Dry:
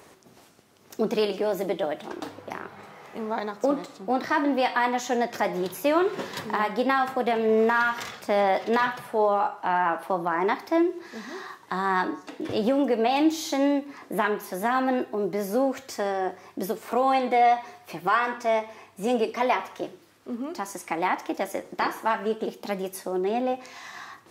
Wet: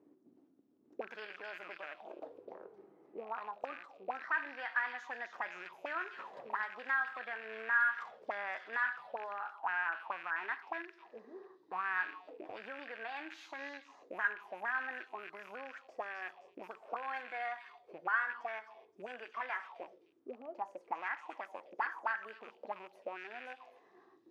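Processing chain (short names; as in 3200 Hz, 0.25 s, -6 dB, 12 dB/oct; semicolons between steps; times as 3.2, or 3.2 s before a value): rattling part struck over -38 dBFS, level -22 dBFS; delay with a stepping band-pass 0.26 s, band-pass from 4100 Hz, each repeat 0.7 oct, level -2.5 dB; auto-wah 270–1600 Hz, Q 6, up, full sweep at -22.5 dBFS; gain -1.5 dB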